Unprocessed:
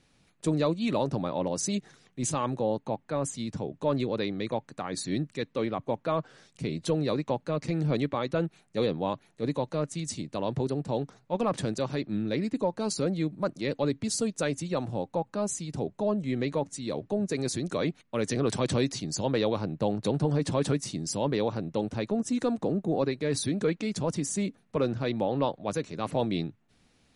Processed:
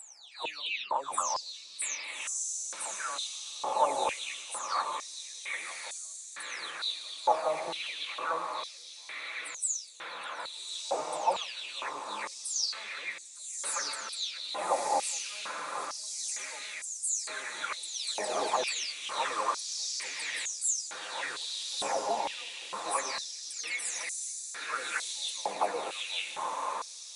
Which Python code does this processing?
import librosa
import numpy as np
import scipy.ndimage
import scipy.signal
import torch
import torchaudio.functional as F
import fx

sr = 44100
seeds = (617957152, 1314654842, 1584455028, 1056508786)

y = fx.spec_delay(x, sr, highs='early', ms=450)
y = fx.echo_diffused(y, sr, ms=1223, feedback_pct=54, wet_db=-3.0)
y = fx.filter_held_highpass(y, sr, hz=2.2, low_hz=800.0, high_hz=7100.0)